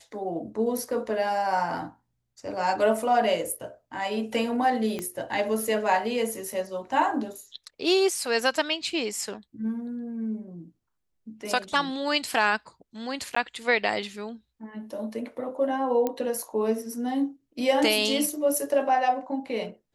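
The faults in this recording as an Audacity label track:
4.990000	4.990000	pop -18 dBFS
13.350000	13.360000	dropout 14 ms
16.070000	16.070000	pop -14 dBFS

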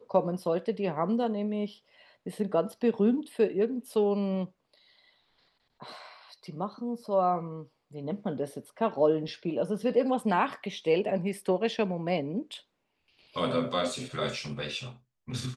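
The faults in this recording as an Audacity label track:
9.280000	9.280000	dropout 2.6 ms

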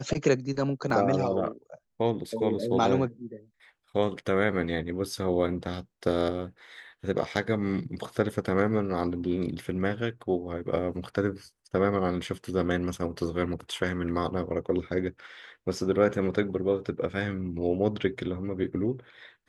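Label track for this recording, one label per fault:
0.900000	0.900000	dropout 2.6 ms
12.270000	12.270000	dropout 3.1 ms

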